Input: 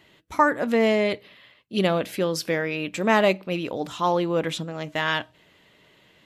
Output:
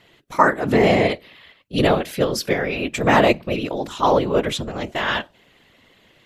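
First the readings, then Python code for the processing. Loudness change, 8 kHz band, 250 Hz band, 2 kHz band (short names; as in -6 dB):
+4.5 dB, +4.0 dB, +4.0 dB, +3.5 dB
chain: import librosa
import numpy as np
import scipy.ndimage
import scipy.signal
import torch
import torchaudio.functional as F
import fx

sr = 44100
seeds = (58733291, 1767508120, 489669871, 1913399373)

p1 = fx.level_steps(x, sr, step_db=11)
p2 = x + (p1 * 10.0 ** (2.0 / 20.0))
p3 = fx.whisperise(p2, sr, seeds[0])
y = p3 * 10.0 ** (-1.0 / 20.0)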